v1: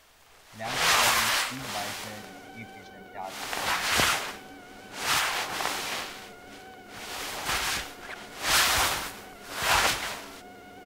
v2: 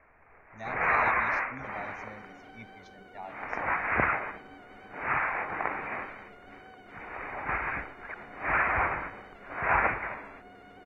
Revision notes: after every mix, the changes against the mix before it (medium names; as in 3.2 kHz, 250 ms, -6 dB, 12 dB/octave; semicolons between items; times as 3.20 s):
speech -4.5 dB; first sound: add steep low-pass 2.4 kHz 96 dB/octave; second sound -4.5 dB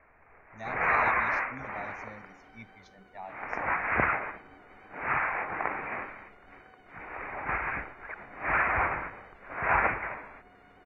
second sound -7.0 dB